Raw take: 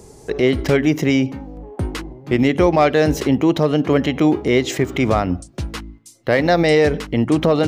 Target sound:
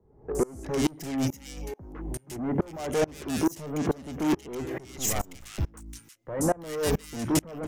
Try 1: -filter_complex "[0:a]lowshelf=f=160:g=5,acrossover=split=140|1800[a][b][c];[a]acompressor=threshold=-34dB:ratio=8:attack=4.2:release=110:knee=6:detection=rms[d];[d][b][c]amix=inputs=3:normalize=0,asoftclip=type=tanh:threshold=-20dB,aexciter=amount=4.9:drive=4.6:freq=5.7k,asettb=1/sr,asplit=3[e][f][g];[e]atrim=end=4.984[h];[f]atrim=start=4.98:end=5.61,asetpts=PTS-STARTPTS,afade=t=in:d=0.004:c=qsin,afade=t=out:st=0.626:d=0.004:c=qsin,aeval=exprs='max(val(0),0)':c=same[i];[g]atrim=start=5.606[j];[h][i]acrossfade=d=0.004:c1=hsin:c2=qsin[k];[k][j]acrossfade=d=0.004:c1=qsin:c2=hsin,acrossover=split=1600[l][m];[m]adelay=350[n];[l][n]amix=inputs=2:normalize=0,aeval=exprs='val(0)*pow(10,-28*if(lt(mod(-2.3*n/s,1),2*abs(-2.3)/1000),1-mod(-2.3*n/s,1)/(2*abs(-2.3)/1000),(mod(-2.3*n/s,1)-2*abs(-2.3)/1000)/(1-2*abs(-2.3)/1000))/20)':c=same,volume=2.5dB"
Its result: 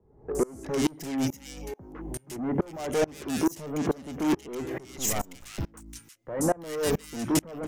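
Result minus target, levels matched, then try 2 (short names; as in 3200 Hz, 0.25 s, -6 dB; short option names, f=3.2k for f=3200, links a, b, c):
compressor: peak gain reduction +10 dB
-filter_complex "[0:a]lowshelf=f=160:g=5,acrossover=split=140|1800[a][b][c];[a]acompressor=threshold=-22.5dB:ratio=8:attack=4.2:release=110:knee=6:detection=rms[d];[d][b][c]amix=inputs=3:normalize=0,asoftclip=type=tanh:threshold=-20dB,aexciter=amount=4.9:drive=4.6:freq=5.7k,asettb=1/sr,asplit=3[e][f][g];[e]atrim=end=4.984[h];[f]atrim=start=4.98:end=5.61,asetpts=PTS-STARTPTS,afade=t=in:d=0.004:c=qsin,afade=t=out:st=0.626:d=0.004:c=qsin,aeval=exprs='max(val(0),0)':c=same[i];[g]atrim=start=5.606[j];[h][i]acrossfade=d=0.004:c1=hsin:c2=qsin[k];[k][j]acrossfade=d=0.004:c1=qsin:c2=hsin,acrossover=split=1600[l][m];[m]adelay=350[n];[l][n]amix=inputs=2:normalize=0,aeval=exprs='val(0)*pow(10,-28*if(lt(mod(-2.3*n/s,1),2*abs(-2.3)/1000),1-mod(-2.3*n/s,1)/(2*abs(-2.3)/1000),(mod(-2.3*n/s,1)-2*abs(-2.3)/1000)/(1-2*abs(-2.3)/1000))/20)':c=same,volume=2.5dB"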